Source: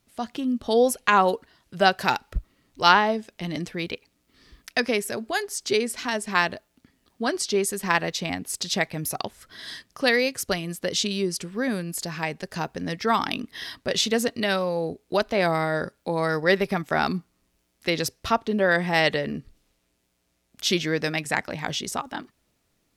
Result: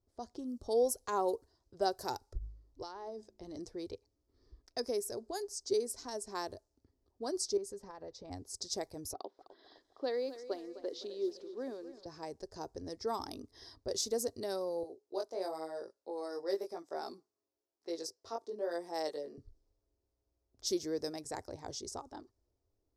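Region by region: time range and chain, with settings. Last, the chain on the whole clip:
0:02.25–0:03.59: hum removal 52.56 Hz, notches 7 + downward compressor, threshold −27 dBFS
0:07.57–0:08.31: low-pass filter 2,300 Hz 6 dB per octave + notch comb filter 360 Hz + downward compressor, threshold −28 dBFS
0:09.13–0:12.06: Chebyshev band-pass filter 270–3,700 Hz, order 3 + feedback echo at a low word length 256 ms, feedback 55%, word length 8 bits, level −13 dB
0:14.83–0:19.38: high-pass filter 330 Hz + chorus effect 1 Hz, delay 17.5 ms, depth 4.1 ms
whole clip: low-pass that shuts in the quiet parts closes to 2,900 Hz, open at −21 dBFS; drawn EQ curve 100 Hz 0 dB, 170 Hz −21 dB, 370 Hz −2 dB, 630 Hz −8 dB, 940 Hz −10 dB, 1,400 Hz −19 dB, 2,800 Hz −29 dB, 5,100 Hz −3 dB; level −4.5 dB

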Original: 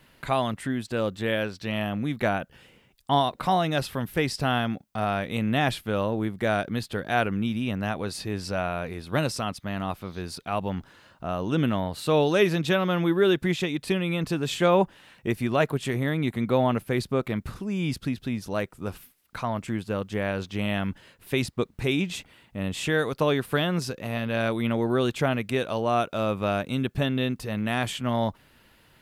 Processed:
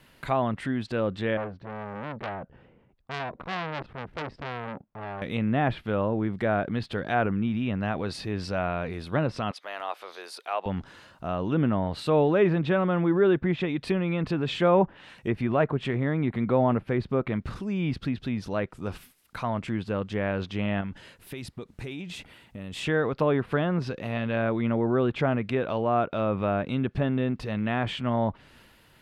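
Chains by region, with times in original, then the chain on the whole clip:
0:01.37–0:05.22: Bessel low-pass filter 860 Hz + saturating transformer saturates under 2,900 Hz
0:09.51–0:10.66: high-pass filter 470 Hz 24 dB per octave + upward compression, threshold −45 dBFS
0:20.81–0:22.76: notch filter 1,100 Hz, Q 21 + downward compressor, threshold −33 dBFS
whole clip: treble cut that deepens with the level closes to 1,700 Hz, closed at −21 dBFS; transient designer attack −1 dB, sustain +4 dB; dynamic equaliser 6,800 Hz, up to −6 dB, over −56 dBFS, Q 1.3

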